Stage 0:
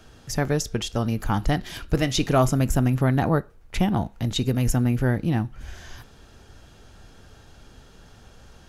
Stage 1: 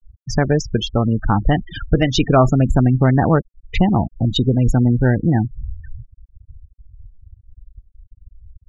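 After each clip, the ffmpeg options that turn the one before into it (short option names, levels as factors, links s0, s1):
-filter_complex "[0:a]asplit=2[s0][s1];[s1]acompressor=threshold=0.0355:ratio=8,volume=1.19[s2];[s0][s2]amix=inputs=2:normalize=0,afftfilt=real='re*gte(hypot(re,im),0.0794)':imag='im*gte(hypot(re,im),0.0794)':win_size=1024:overlap=0.75,lowpass=4600,volume=1.68"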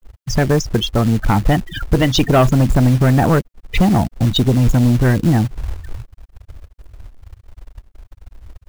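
-af "acrusher=bits=4:mode=log:mix=0:aa=0.000001,asoftclip=type=hard:threshold=0.355,acontrast=61,volume=0.75"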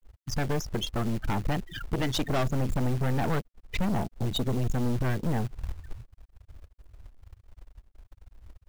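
-af "aeval=exprs='(tanh(7.08*val(0)+0.75)-tanh(0.75))/7.08':c=same,volume=0.422"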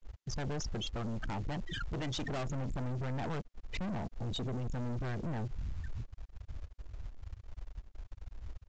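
-af "alimiter=level_in=2.37:limit=0.0631:level=0:latency=1:release=48,volume=0.422,aresample=16000,asoftclip=type=tanh:threshold=0.0119,aresample=44100,volume=2"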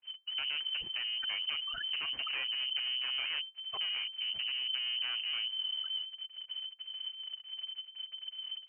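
-af "lowpass=f=2600:t=q:w=0.5098,lowpass=f=2600:t=q:w=0.6013,lowpass=f=2600:t=q:w=0.9,lowpass=f=2600:t=q:w=2.563,afreqshift=-3100"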